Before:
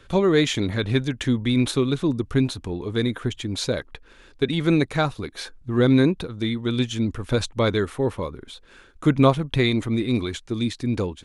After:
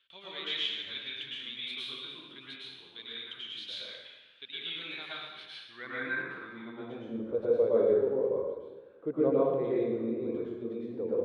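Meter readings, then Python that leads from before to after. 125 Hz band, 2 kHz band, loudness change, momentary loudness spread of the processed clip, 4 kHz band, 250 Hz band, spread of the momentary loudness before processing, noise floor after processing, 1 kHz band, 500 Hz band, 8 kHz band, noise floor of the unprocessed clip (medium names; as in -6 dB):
-25.0 dB, -8.5 dB, -10.0 dB, 17 LU, -6.0 dB, -16.0 dB, 10 LU, -55 dBFS, -14.0 dB, -5.5 dB, under -25 dB, -52 dBFS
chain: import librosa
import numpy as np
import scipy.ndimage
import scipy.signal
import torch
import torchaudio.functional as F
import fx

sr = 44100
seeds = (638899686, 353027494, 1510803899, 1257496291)

y = fx.peak_eq(x, sr, hz=6800.0, db=-12.0, octaves=0.96)
y = fx.filter_sweep_bandpass(y, sr, from_hz=3200.0, to_hz=470.0, start_s=5.38, end_s=7.12, q=4.5)
y = fx.rev_plate(y, sr, seeds[0], rt60_s=1.2, hf_ratio=0.8, predelay_ms=95, drr_db=-8.0)
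y = y * librosa.db_to_amplitude(-5.5)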